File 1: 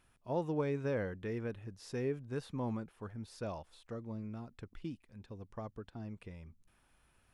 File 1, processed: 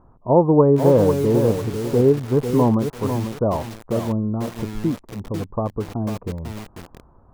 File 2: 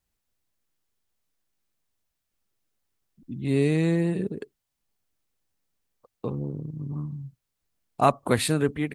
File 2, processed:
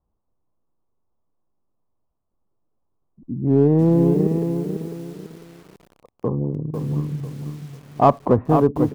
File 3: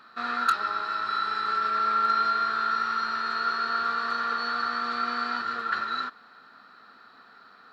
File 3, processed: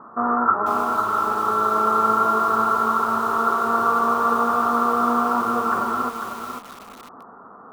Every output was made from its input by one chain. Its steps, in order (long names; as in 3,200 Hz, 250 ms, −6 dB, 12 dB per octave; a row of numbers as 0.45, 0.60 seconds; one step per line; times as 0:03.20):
elliptic low-pass filter 1,100 Hz, stop band 80 dB
in parallel at −8 dB: gain into a clipping stage and back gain 21.5 dB
on the sum: feedback echo at a low word length 497 ms, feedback 35%, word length 8 bits, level −6.5 dB
loudness normalisation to −20 LKFS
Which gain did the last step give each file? +17.5, +5.0, +13.0 decibels